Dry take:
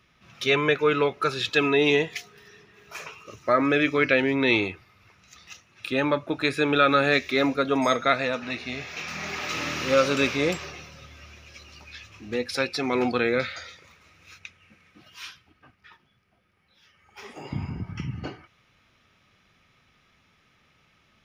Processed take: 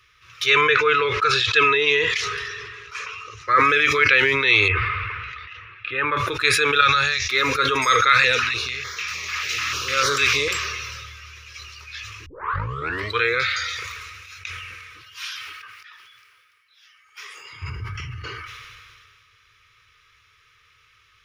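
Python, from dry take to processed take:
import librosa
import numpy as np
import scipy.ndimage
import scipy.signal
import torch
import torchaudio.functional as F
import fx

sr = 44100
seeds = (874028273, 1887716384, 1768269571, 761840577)

y = fx.air_absorb(x, sr, metres=82.0, at=(0.61, 3.56))
y = fx.lowpass(y, sr, hz=2600.0, slope=24, at=(4.68, 6.17))
y = fx.curve_eq(y, sr, hz=(130.0, 200.0, 490.0, 740.0, 1100.0, 2200.0, 3900.0, 5600.0, 9300.0, 15000.0), db=(0, -18, -16, -1, -11, -10, -5, 3, -13, -21), at=(6.81, 7.3))
y = fx.filter_held_notch(y, sr, hz=6.7, low_hz=370.0, high_hz=2600.0, at=(8.09, 10.51))
y = fx.highpass(y, sr, hz=1300.0, slope=6, at=(15.25, 17.62))
y = fx.edit(y, sr, fx.tape_start(start_s=12.26, length_s=0.95), tone=tone)
y = fx.curve_eq(y, sr, hz=(110.0, 210.0, 460.0, 710.0, 1100.0), db=(0, -28, -2, -26, 4))
y = fx.sustainer(y, sr, db_per_s=26.0)
y = y * 10.0 ** (2.5 / 20.0)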